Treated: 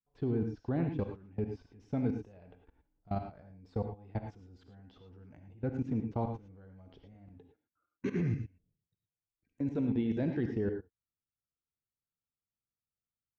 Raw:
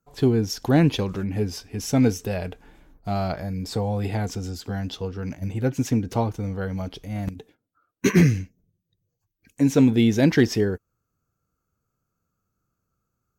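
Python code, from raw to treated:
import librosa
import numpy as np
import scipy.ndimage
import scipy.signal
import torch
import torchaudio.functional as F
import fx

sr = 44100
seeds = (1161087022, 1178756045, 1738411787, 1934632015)

y = fx.level_steps(x, sr, step_db=24)
y = fx.spacing_loss(y, sr, db_at_10k=33)
y = fx.rev_gated(y, sr, seeds[0], gate_ms=130, shape='rising', drr_db=5.0)
y = y * librosa.db_to_amplitude(-6.0)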